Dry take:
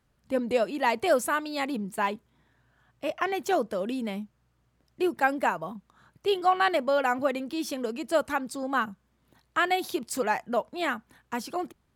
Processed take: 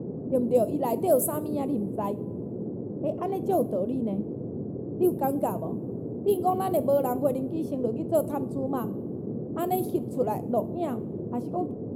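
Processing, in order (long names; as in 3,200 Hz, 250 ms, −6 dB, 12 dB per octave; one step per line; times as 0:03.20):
low-pass that shuts in the quiet parts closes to 1,000 Hz, open at −20.5 dBFS
drawn EQ curve 620 Hz 0 dB, 1,100 Hz −12 dB, 1,700 Hz −27 dB, 2,800 Hz −19 dB, 5,500 Hz −15 dB, 13,000 Hz +15 dB
noise in a band 100–430 Hz −36 dBFS
coupled-rooms reverb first 0.45 s, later 2.1 s, from −18 dB, DRR 13 dB
level +2 dB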